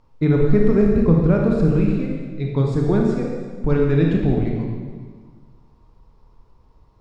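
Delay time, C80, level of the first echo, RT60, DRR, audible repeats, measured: no echo audible, 2.5 dB, no echo audible, 1.6 s, −1.0 dB, no echo audible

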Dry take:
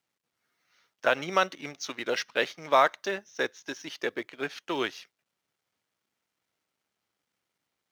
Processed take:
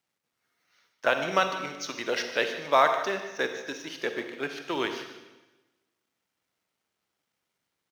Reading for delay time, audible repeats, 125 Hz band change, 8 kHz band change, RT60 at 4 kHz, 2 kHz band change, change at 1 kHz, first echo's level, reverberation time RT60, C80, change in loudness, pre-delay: 150 ms, 1, +1.5 dB, +1.0 dB, 1.1 s, +1.0 dB, +1.0 dB, −15.0 dB, 1.1 s, 8.0 dB, +1.0 dB, 38 ms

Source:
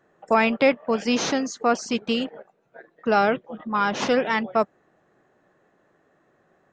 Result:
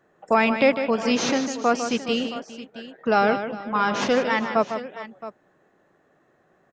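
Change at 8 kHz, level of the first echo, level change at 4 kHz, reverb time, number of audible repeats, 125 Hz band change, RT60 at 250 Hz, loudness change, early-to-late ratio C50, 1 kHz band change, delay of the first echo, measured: +0.5 dB, −9.0 dB, +0.5 dB, no reverb audible, 3, +1.0 dB, no reverb audible, +0.5 dB, no reverb audible, +0.5 dB, 152 ms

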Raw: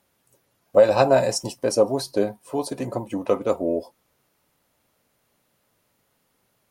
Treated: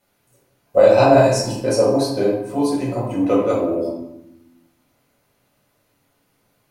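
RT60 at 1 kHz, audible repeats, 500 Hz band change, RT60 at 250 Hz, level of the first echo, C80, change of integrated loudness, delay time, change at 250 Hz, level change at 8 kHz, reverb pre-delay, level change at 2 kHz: 0.85 s, no echo audible, +4.5 dB, 1.3 s, no echo audible, 5.0 dB, +5.0 dB, no echo audible, +8.0 dB, +2.0 dB, 7 ms, +5.0 dB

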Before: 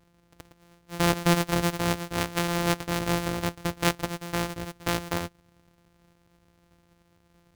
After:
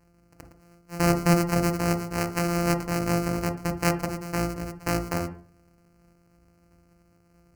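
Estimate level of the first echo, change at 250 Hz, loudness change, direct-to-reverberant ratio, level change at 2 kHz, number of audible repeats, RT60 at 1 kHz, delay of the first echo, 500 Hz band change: no echo audible, +3.0 dB, +1.5 dB, 11.0 dB, −1.5 dB, no echo audible, 0.40 s, no echo audible, +2.0 dB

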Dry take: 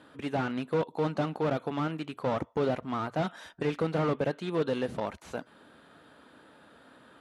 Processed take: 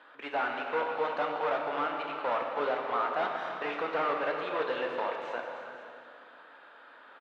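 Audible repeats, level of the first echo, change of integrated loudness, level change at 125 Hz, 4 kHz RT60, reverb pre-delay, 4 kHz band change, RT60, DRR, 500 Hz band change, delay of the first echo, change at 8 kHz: 2, −11.0 dB, −0.5 dB, −22.0 dB, 1.9 s, 16 ms, +0.5 dB, 2.2 s, 1.0 dB, −1.0 dB, 313 ms, can't be measured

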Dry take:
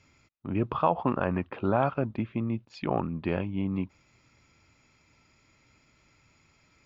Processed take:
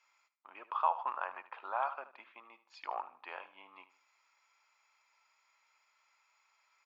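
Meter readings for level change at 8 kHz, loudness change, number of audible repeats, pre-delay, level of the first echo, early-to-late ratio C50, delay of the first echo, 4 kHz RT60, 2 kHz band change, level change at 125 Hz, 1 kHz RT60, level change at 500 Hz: can't be measured, −8.5 dB, 3, no reverb audible, −15.0 dB, no reverb audible, 76 ms, no reverb audible, −6.5 dB, below −40 dB, no reverb audible, −16.5 dB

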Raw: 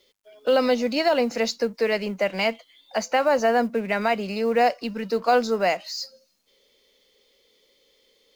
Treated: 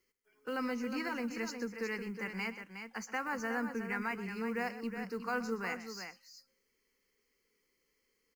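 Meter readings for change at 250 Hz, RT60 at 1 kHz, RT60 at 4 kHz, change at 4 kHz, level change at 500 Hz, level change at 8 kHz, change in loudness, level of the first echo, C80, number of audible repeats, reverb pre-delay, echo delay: −10.0 dB, no reverb audible, no reverb audible, −18.0 dB, −19.5 dB, can't be measured, −14.5 dB, −14.5 dB, no reverb audible, 2, no reverb audible, 124 ms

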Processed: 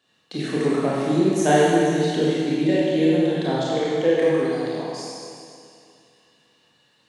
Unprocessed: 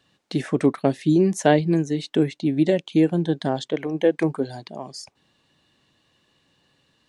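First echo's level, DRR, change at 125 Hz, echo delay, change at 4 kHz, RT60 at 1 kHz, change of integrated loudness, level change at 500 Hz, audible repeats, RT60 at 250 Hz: no echo audible, −8.0 dB, −1.5 dB, no echo audible, +4.0 dB, 2.4 s, +1.0 dB, +3.0 dB, no echo audible, 2.3 s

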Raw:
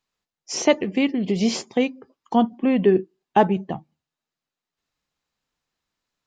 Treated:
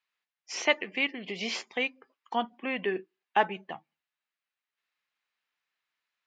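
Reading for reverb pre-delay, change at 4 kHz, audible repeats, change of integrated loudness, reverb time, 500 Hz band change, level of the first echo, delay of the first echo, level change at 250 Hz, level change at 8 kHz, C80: no reverb audible, −2.5 dB, no echo audible, −9.0 dB, no reverb audible, −12.0 dB, no echo audible, no echo audible, −17.5 dB, −10.5 dB, no reverb audible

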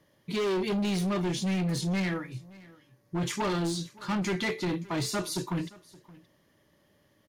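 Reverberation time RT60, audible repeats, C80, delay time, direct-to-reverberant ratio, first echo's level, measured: no reverb audible, 1, no reverb audible, 571 ms, no reverb audible, −22.0 dB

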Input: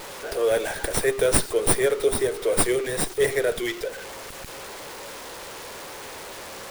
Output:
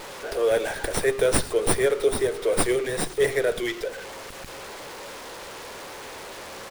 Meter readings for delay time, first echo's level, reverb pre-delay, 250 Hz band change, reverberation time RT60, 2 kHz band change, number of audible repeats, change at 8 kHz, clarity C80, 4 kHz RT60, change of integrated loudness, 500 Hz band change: 107 ms, −20.5 dB, no reverb audible, 0.0 dB, no reverb audible, 0.0 dB, 1, −3.5 dB, no reverb audible, no reverb audible, −1.0 dB, 0.0 dB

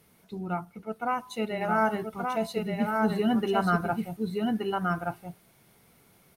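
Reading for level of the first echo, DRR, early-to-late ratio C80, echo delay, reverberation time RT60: −3.0 dB, no reverb audible, no reverb audible, 1,175 ms, no reverb audible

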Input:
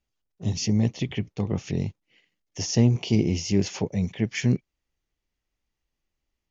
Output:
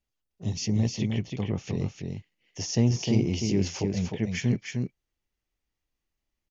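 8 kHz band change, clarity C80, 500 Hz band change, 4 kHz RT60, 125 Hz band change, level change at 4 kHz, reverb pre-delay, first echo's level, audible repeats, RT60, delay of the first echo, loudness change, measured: can't be measured, no reverb audible, −2.0 dB, no reverb audible, −2.0 dB, −2.0 dB, no reverb audible, −4.5 dB, 1, no reverb audible, 306 ms, −2.5 dB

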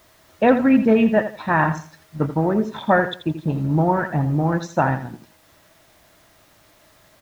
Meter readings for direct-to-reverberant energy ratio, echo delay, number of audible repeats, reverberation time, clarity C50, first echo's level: no reverb audible, 83 ms, 2, no reverb audible, no reverb audible, −11.0 dB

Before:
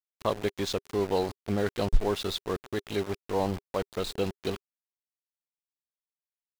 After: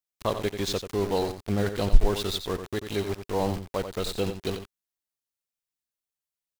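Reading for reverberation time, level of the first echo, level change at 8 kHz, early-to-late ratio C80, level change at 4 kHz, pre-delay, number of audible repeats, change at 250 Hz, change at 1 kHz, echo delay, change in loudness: no reverb audible, −9.0 dB, +4.5 dB, no reverb audible, +3.0 dB, no reverb audible, 1, +2.0 dB, +1.0 dB, 89 ms, +2.0 dB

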